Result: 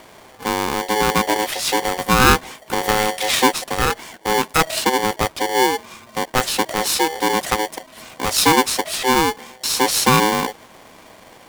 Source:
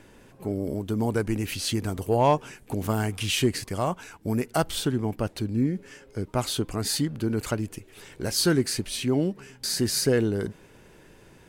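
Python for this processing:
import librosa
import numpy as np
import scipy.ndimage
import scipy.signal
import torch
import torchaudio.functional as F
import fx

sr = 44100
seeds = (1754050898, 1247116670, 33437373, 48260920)

y = x * np.sign(np.sin(2.0 * np.pi * 640.0 * np.arange(len(x)) / sr))
y = y * librosa.db_to_amplitude(7.5)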